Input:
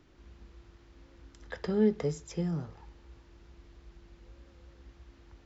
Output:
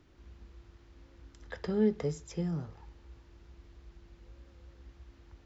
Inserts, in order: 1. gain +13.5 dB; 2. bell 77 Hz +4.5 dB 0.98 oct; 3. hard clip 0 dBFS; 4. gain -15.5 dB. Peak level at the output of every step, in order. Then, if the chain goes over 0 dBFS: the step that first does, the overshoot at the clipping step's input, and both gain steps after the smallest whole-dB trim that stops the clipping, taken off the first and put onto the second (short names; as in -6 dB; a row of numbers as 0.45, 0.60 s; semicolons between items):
-2.0, -2.0, -2.0, -17.5 dBFS; no overload